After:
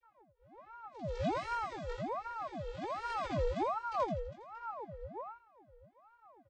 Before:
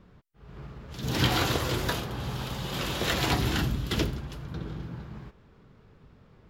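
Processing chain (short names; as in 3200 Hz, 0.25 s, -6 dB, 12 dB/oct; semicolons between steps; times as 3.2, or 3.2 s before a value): 1.21–1.9 minimum comb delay 1 ms; flange 0.83 Hz, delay 1.3 ms, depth 5.8 ms, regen -71%; vocoder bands 32, square 227 Hz; feedback echo 83 ms, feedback 29%, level -5 dB; chorus 1.9 Hz, delay 17 ms, depth 5.6 ms; ring modulator with a swept carrier 720 Hz, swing 65%, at 1.3 Hz; gain +1 dB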